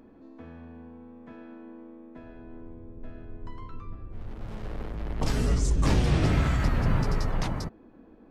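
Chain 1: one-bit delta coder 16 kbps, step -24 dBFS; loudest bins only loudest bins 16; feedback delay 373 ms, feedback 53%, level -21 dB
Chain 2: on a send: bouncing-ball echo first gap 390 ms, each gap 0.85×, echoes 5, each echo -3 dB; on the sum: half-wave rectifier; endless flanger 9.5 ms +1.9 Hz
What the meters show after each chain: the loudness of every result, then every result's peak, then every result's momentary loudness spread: -30.5 LUFS, -31.5 LUFS; -13.0 dBFS, -13.0 dBFS; 11 LU, 21 LU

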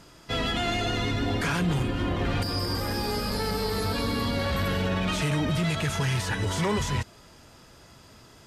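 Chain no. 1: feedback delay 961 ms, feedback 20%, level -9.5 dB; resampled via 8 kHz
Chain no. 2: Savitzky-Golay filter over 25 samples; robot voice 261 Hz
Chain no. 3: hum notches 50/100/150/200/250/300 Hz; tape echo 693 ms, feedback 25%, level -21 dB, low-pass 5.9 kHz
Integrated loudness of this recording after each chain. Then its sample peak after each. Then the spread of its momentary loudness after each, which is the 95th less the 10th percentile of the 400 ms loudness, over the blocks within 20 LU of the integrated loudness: -27.5 LUFS, -32.0 LUFS, -28.0 LUFS; -15.5 dBFS, -15.0 dBFS, -16.0 dBFS; 10 LU, 4 LU, 3 LU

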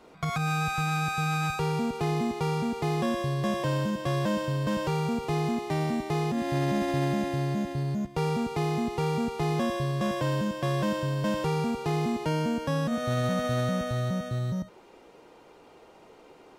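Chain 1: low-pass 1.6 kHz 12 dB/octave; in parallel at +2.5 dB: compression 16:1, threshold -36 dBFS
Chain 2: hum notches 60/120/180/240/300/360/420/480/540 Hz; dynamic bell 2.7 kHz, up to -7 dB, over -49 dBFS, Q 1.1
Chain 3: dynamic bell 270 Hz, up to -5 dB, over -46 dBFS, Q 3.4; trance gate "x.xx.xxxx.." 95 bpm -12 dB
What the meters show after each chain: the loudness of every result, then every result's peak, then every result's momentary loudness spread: -26.5 LUFS, -29.5 LUFS, -31.0 LUFS; -14.5 dBFS, -17.0 dBFS, -18.5 dBFS; 2 LU, 2 LU, 6 LU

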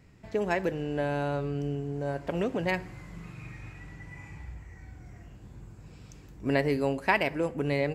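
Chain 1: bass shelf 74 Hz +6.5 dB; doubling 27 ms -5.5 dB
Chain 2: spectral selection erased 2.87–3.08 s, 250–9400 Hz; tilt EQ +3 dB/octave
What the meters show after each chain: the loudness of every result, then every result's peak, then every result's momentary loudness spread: -28.5 LUFS, -31.0 LUFS; -10.0 dBFS, -6.5 dBFS; 20 LU, 23 LU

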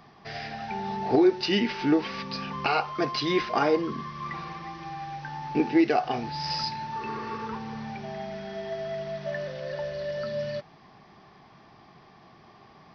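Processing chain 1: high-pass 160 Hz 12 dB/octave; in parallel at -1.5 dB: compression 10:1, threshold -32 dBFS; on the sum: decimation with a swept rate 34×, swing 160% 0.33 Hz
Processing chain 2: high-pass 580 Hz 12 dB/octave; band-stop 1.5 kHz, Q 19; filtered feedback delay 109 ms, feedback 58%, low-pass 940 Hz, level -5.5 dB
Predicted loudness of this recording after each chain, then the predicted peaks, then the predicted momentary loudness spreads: -27.0 LUFS, -32.0 LUFS; -9.5 dBFS, -13.0 dBFS; 11 LU, 12 LU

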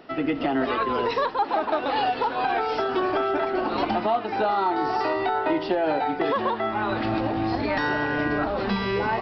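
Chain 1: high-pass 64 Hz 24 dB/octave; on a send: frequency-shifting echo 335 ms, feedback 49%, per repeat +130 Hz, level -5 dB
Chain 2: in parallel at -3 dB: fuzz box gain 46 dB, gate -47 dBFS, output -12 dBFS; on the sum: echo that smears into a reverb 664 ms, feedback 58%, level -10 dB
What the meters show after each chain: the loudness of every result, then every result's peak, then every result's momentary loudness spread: -23.0 LUFS, -13.5 LUFS; -10.5 dBFS, -5.0 dBFS; 2 LU, 1 LU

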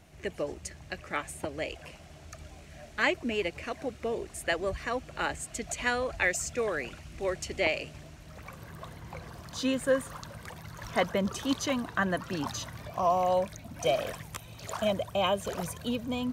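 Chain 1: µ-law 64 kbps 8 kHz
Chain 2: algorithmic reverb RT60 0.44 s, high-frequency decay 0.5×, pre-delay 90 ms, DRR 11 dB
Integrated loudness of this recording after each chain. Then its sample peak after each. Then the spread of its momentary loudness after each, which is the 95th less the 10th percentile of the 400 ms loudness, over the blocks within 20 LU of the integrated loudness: -32.0 LUFS, -31.5 LUFS; -13.0 dBFS, -12.5 dBFS; 17 LU, 17 LU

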